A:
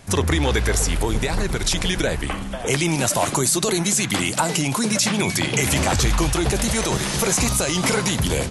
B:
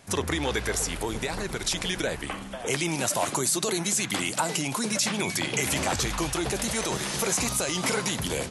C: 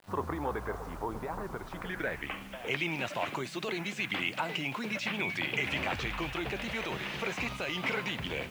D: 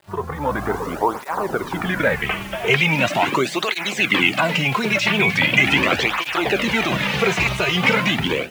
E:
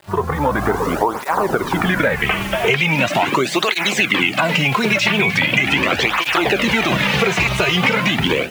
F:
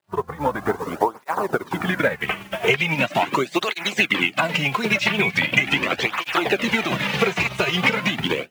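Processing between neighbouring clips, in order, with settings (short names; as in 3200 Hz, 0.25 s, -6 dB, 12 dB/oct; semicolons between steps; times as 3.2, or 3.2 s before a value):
low shelf 120 Hz -11.5 dB; gain -5.5 dB
low-pass sweep 1100 Hz -> 2600 Hz, 1.66–2.32; bit-crush 8-bit; gain -7.5 dB
AGC gain up to 10 dB; tape flanging out of phase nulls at 0.4 Hz, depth 4.2 ms; gain +8.5 dB
compressor, threshold -21 dBFS, peak gain reduction 10.5 dB; gain +8 dB
HPF 95 Hz; upward expander 2.5:1, over -32 dBFS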